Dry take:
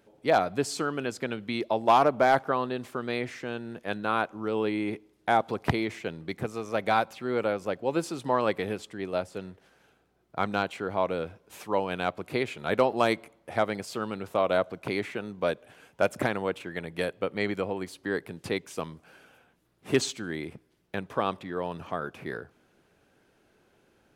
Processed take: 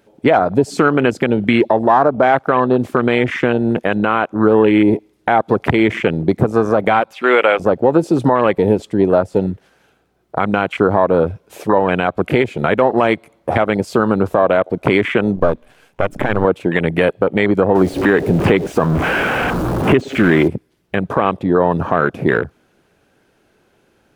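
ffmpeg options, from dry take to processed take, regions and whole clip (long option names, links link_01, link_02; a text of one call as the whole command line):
ffmpeg -i in.wav -filter_complex "[0:a]asettb=1/sr,asplit=3[link_01][link_02][link_03];[link_01]atrim=end=7.134[link_04];[link_02]atrim=start=7.13:end=7.6,asetpts=PTS-STARTPTS,afade=type=in:duration=0.004:curve=qsin,afade=type=out:start_time=0.466:duration=0.004:curve=qsin,highpass=490,equalizer=frequency=2700:width_type=o:width=1.6:gain=8,bandreject=frequency=4200:width=14[link_05];[link_03]atrim=start=7.596[link_06];[link_04][link_05]acrossfade=duration=0.004:curve1=hsin:curve2=qsin[link_07];[link_07][link_06]acrossfade=duration=0.004:curve1=qsin:curve2=hsin,asettb=1/sr,asplit=3[link_08][link_09][link_10];[link_08]atrim=end=15.364[link_11];[link_09]atrim=start=15.36:end=16.45,asetpts=PTS-STARTPTS,afade=type=in:duration=0.004:curve=qsin,afade=type=out:start_time=1.086:duration=0.004:curve=qsin,aeval=exprs='if(lt(val(0),0),0.251*val(0),val(0))':channel_layout=same,bandreject=frequency=60:width_type=h:width=6,bandreject=frequency=120:width_type=h:width=6,bandreject=frequency=180:width_type=h:width=6,bandreject=frequency=240:width_type=h:width=6,bandreject=frequency=300:width_type=h:width=6[link_12];[link_10]atrim=start=16.446[link_13];[link_11][link_12]acrossfade=duration=0.004:curve1=hsin:curve2=qsin[link_14];[link_14][link_13]acrossfade=duration=0.004:curve1=qsin:curve2=hsin,asettb=1/sr,asplit=3[link_15][link_16][link_17];[link_15]atrim=end=17.754[link_18];[link_16]atrim=start=17.75:end=20.48,asetpts=PTS-STARTPTS,afade=type=in:duration=0.004:curve=qsin,afade=type=out:start_time=2.726:duration=0.004:curve=qsin,aeval=exprs='val(0)+0.5*0.02*sgn(val(0))':channel_layout=same,acrossover=split=3300[link_19][link_20];[link_20]acompressor=threshold=-43dB:ratio=4:attack=1:release=60[link_21];[link_19][link_21]amix=inputs=2:normalize=0[link_22];[link_17]atrim=start=20.476[link_23];[link_18][link_22]acrossfade=duration=0.004:curve1=hsin:curve2=qsin[link_24];[link_24][link_23]acrossfade=duration=0.004:curve1=qsin:curve2=hsin,acompressor=threshold=-31dB:ratio=5,afwtdn=0.00891,alimiter=level_in=24.5dB:limit=-1dB:release=50:level=0:latency=1,volume=-1dB" out.wav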